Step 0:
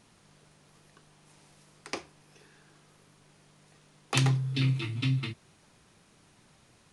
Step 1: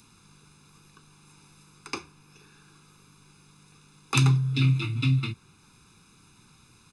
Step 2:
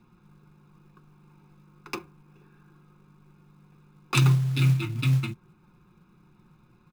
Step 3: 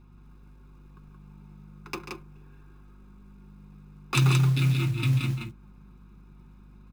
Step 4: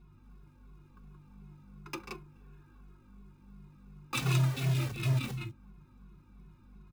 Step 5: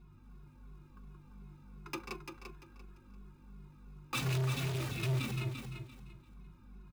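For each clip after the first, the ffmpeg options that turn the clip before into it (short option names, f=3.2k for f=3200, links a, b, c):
-filter_complex "[0:a]aecho=1:1:0.8:0.9,acrossover=split=120|3100[a][b][c];[c]acompressor=mode=upward:threshold=-57dB:ratio=2.5[d];[a][b][d]amix=inputs=3:normalize=0"
-af "adynamicsmooth=sensitivity=3.5:basefreq=1.4k,aecho=1:1:5.6:0.57,acrusher=bits=6:mode=log:mix=0:aa=0.000001"
-af "aeval=exprs='val(0)+0.00282*(sin(2*PI*50*n/s)+sin(2*PI*2*50*n/s)/2+sin(2*PI*3*50*n/s)/3+sin(2*PI*4*50*n/s)/4+sin(2*PI*5*50*n/s)/5)':c=same,aecho=1:1:139.9|174.9:0.316|0.631,volume=-1.5dB"
-filter_complex "[0:a]asplit=2[a][b];[b]aeval=exprs='(mod(14.1*val(0)+1,2)-1)/14.1':c=same,volume=-9dB[c];[a][c]amix=inputs=2:normalize=0,asplit=2[d][e];[e]adelay=2.3,afreqshift=-2.8[f];[d][f]amix=inputs=2:normalize=1,volume=-4dB"
-af "asoftclip=type=hard:threshold=-30.5dB,aecho=1:1:343|686|1029:0.447|0.112|0.0279"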